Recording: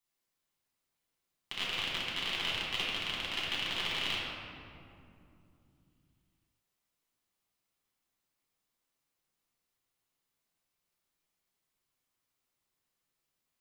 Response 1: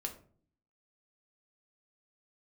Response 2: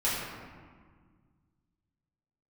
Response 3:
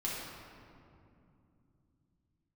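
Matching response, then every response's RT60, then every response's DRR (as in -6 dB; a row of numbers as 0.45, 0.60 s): 3; 0.50, 1.7, 2.6 s; 2.5, -10.0, -6.5 dB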